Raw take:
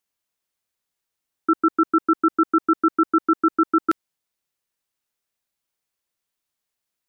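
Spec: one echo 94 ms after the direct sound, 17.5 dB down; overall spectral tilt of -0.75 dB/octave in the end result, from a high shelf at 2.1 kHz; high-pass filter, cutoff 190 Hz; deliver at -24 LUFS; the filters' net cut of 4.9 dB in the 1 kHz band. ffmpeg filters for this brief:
-af "highpass=190,equalizer=f=1000:t=o:g=-5,highshelf=f=2100:g=-7,aecho=1:1:94:0.133"

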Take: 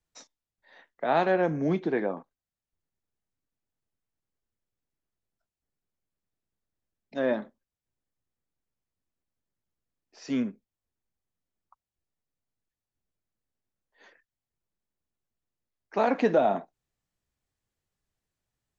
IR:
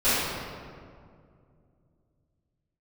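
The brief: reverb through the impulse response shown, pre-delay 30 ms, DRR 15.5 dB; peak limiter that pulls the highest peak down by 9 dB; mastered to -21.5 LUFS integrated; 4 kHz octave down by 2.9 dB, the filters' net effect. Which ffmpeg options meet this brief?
-filter_complex "[0:a]equalizer=f=4000:t=o:g=-3.5,alimiter=limit=0.0944:level=0:latency=1,asplit=2[s0][s1];[1:a]atrim=start_sample=2205,adelay=30[s2];[s1][s2]afir=irnorm=-1:irlink=0,volume=0.0224[s3];[s0][s3]amix=inputs=2:normalize=0,volume=3.35"

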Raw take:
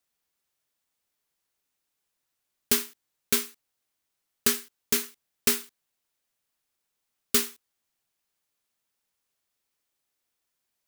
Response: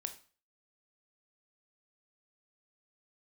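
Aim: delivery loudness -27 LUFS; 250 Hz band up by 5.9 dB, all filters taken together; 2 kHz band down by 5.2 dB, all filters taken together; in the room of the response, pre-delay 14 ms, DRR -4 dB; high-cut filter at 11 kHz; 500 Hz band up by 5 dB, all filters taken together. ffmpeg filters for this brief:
-filter_complex "[0:a]lowpass=11000,equalizer=f=250:t=o:g=5.5,equalizer=f=500:t=o:g=4.5,equalizer=f=2000:t=o:g=-7,asplit=2[s0][s1];[1:a]atrim=start_sample=2205,adelay=14[s2];[s1][s2]afir=irnorm=-1:irlink=0,volume=2[s3];[s0][s3]amix=inputs=2:normalize=0,volume=0.708"

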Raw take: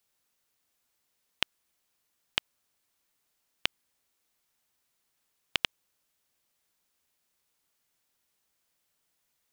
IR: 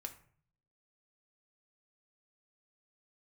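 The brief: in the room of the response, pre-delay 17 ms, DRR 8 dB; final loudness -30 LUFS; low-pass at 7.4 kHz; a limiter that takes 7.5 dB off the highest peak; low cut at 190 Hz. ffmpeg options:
-filter_complex "[0:a]highpass=190,lowpass=7400,alimiter=limit=0.251:level=0:latency=1,asplit=2[s0][s1];[1:a]atrim=start_sample=2205,adelay=17[s2];[s1][s2]afir=irnorm=-1:irlink=0,volume=0.596[s3];[s0][s3]amix=inputs=2:normalize=0,volume=3.76"

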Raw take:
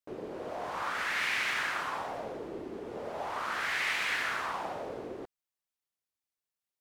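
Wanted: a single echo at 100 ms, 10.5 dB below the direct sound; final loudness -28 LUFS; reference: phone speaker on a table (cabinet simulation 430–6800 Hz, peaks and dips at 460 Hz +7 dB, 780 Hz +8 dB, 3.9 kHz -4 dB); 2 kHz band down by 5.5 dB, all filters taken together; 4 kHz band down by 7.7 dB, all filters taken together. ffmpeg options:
-af "highpass=f=430:w=0.5412,highpass=f=430:w=1.3066,equalizer=f=460:t=q:w=4:g=7,equalizer=f=780:t=q:w=4:g=8,equalizer=f=3900:t=q:w=4:g=-4,lowpass=f=6800:w=0.5412,lowpass=f=6800:w=1.3066,equalizer=f=2000:t=o:g=-5.5,equalizer=f=4000:t=o:g=-6.5,aecho=1:1:100:0.299,volume=2.24"

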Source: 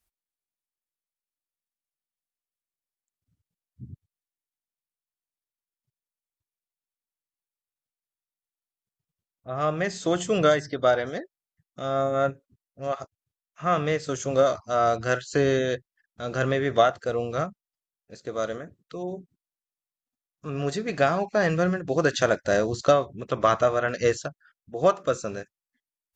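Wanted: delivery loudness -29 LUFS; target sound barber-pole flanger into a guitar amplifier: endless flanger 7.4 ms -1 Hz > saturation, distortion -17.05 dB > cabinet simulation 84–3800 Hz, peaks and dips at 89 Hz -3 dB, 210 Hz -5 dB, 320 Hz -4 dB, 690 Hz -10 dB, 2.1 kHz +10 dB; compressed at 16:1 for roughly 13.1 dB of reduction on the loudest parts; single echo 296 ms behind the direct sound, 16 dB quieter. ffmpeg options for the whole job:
-filter_complex "[0:a]acompressor=threshold=0.0447:ratio=16,aecho=1:1:296:0.158,asplit=2[s0][s1];[s1]adelay=7.4,afreqshift=-1[s2];[s0][s2]amix=inputs=2:normalize=1,asoftclip=threshold=0.0473,highpass=84,equalizer=f=89:t=q:w=4:g=-3,equalizer=f=210:t=q:w=4:g=-5,equalizer=f=320:t=q:w=4:g=-4,equalizer=f=690:t=q:w=4:g=-10,equalizer=f=2100:t=q:w=4:g=10,lowpass=f=3800:w=0.5412,lowpass=f=3800:w=1.3066,volume=3.35"

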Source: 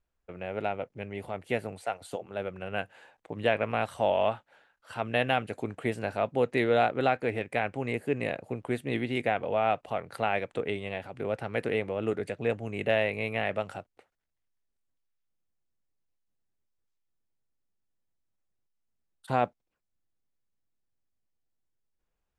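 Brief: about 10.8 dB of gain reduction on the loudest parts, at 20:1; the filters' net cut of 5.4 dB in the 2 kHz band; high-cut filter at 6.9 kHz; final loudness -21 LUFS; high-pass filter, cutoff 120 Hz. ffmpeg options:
-af "highpass=120,lowpass=6900,equalizer=f=2000:t=o:g=-7,acompressor=threshold=0.0282:ratio=20,volume=7.5"

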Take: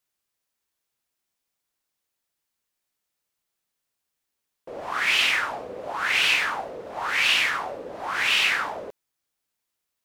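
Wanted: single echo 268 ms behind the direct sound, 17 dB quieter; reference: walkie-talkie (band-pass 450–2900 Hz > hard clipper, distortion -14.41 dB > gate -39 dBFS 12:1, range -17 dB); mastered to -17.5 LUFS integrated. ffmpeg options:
-af "highpass=450,lowpass=2900,aecho=1:1:268:0.141,asoftclip=type=hard:threshold=0.0944,agate=range=0.141:threshold=0.0112:ratio=12,volume=2.51"

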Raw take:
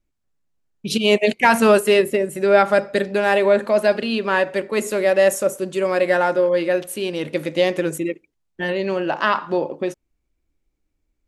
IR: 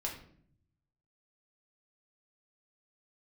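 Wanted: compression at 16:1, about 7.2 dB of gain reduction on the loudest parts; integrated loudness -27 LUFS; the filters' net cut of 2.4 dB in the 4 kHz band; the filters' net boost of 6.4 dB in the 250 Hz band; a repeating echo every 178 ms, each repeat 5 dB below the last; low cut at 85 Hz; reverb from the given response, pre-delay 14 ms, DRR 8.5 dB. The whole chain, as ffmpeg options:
-filter_complex "[0:a]highpass=85,equalizer=f=250:t=o:g=9,equalizer=f=4000:t=o:g=-3.5,acompressor=threshold=0.224:ratio=16,aecho=1:1:178|356|534|712|890|1068|1246:0.562|0.315|0.176|0.0988|0.0553|0.031|0.0173,asplit=2[s0][s1];[1:a]atrim=start_sample=2205,adelay=14[s2];[s1][s2]afir=irnorm=-1:irlink=0,volume=0.316[s3];[s0][s3]amix=inputs=2:normalize=0,volume=0.355"

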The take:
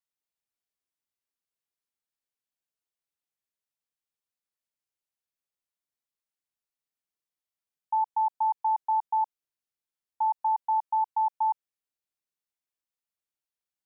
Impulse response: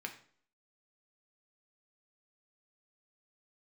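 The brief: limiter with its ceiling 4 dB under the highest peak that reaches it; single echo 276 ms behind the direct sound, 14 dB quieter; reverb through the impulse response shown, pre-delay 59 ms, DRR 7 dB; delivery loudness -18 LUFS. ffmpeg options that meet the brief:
-filter_complex "[0:a]alimiter=level_in=1.12:limit=0.0631:level=0:latency=1,volume=0.891,aecho=1:1:276:0.2,asplit=2[s0][s1];[1:a]atrim=start_sample=2205,adelay=59[s2];[s1][s2]afir=irnorm=-1:irlink=0,volume=0.447[s3];[s0][s3]amix=inputs=2:normalize=0,volume=5.01"

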